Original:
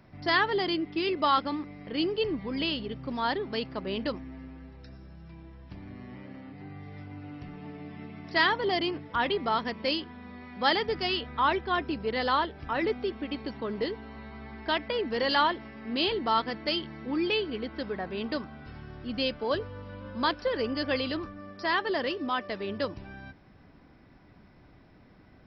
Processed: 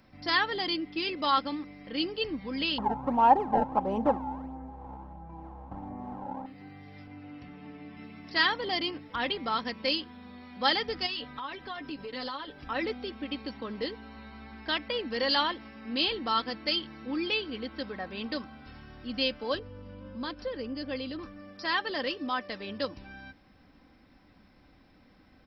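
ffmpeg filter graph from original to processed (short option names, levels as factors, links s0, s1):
-filter_complex "[0:a]asettb=1/sr,asplit=3[s0][s1][s2];[s0]atrim=end=2.784[s3];[s1]atrim=start=2.78:end=6.46,asetpts=PTS-STARTPTS,afade=t=in:d=0.004:c=qsin,afade=t=out:st=3.676:d=0.004:c=qsin,acrusher=samples=22:mix=1:aa=0.000001:lfo=1:lforange=35.2:lforate=1.5,lowpass=f=860:t=q:w=7.3,acontrast=31[s4];[s2]atrim=start=6.456[s5];[s3][s4]acrossfade=d=0.004:c1=hsin:c2=qsin[s6];[s6][s5]acrossfade=d=0.004:c1=qsin:c2=hsin,asettb=1/sr,asplit=3[s7][s8][s9];[s7]atrim=end=7.074[s10];[s8]atrim=start=7.07:end=7.97,asetpts=PTS-STARTPTS,afade=t=in:d=0.004:c=qsin,afade=t=out:st=0.896:d=0.004:c=qsin,highpass=60,bass=f=250:g=0,treble=f=4000:g=-7[s11];[s9]atrim=start=7.966[s12];[s10][s11]acrossfade=d=0.004:c1=hsin:c2=qsin[s13];[s13][s12]acrossfade=d=0.004:c1=qsin:c2=hsin,asettb=1/sr,asplit=3[s14][s15][s16];[s14]atrim=end=11.064[s17];[s15]atrim=start=11.06:end=12.64,asetpts=PTS-STARTPTS,afade=t=in:d=0.004:c=qsin,afade=t=out:st=1.576:d=0.004:c=qsin,aecho=1:1:7.1:0.62,atrim=end_sample=69678,acompressor=threshold=0.0282:ratio=12:attack=3.2:release=140:knee=1:detection=peak[s18];[s16]atrim=start=12.636[s19];[s17][s18]acrossfade=d=0.004:c1=hsin:c2=qsin[s20];[s20][s19]acrossfade=d=0.004:c1=qsin:c2=hsin,asettb=1/sr,asplit=3[s21][s22][s23];[s21]atrim=end=19.594[s24];[s22]atrim=start=19.59:end=21.19,asetpts=PTS-STARTPTS,afade=t=in:d=0.004:c=qsin,afade=t=out:st=1.596:d=0.004:c=qsin,lowpass=f=2600:p=1,equalizer=f=1500:w=0.3:g=-7.5,acompressor=mode=upward:threshold=0.02:ratio=2.5:attack=3.2:release=140:knee=2.83:detection=peak[s25];[s23]atrim=start=21.186[s26];[s24][s25]acrossfade=d=0.004:c1=hsin:c2=qsin[s27];[s27][s26]acrossfade=d=0.004:c1=qsin:c2=hsin,highshelf=f=2700:g=8.5,aecho=1:1:3.8:0.42,volume=0.596"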